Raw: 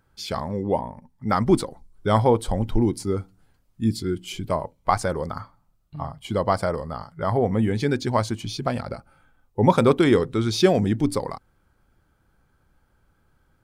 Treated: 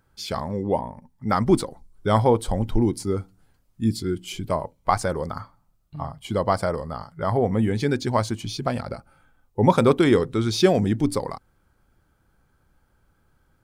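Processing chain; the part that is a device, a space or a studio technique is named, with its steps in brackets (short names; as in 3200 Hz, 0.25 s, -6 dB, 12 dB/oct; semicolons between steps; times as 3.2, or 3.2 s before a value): exciter from parts (in parallel at -12 dB: HPF 4000 Hz 12 dB/oct + soft clip -37 dBFS, distortion -6 dB)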